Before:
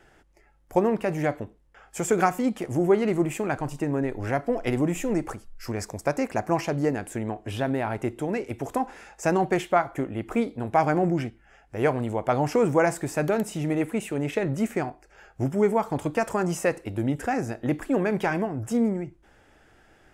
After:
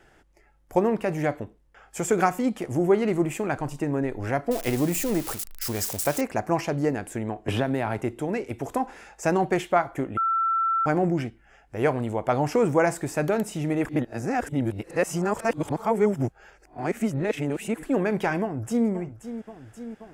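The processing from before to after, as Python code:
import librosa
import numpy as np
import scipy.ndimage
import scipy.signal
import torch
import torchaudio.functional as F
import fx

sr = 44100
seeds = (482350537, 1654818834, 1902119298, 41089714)

y = fx.crossing_spikes(x, sr, level_db=-22.5, at=(4.51, 6.21))
y = fx.band_squash(y, sr, depth_pct=100, at=(7.48, 8.01))
y = fx.echo_throw(y, sr, start_s=18.41, length_s=0.47, ms=530, feedback_pct=75, wet_db=-12.0)
y = fx.edit(y, sr, fx.bleep(start_s=10.17, length_s=0.69, hz=1340.0, db=-20.5),
    fx.reverse_span(start_s=13.85, length_s=3.98), tone=tone)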